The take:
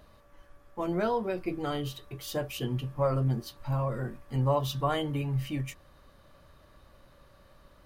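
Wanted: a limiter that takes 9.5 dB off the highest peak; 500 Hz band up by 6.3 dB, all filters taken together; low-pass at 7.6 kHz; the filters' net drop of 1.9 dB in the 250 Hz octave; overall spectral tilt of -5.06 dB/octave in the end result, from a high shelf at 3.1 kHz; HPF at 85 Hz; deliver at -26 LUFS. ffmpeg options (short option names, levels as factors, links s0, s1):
-af "highpass=85,lowpass=7600,equalizer=f=250:t=o:g=-6.5,equalizer=f=500:t=o:g=8.5,highshelf=f=3100:g=9,volume=1.88,alimiter=limit=0.178:level=0:latency=1"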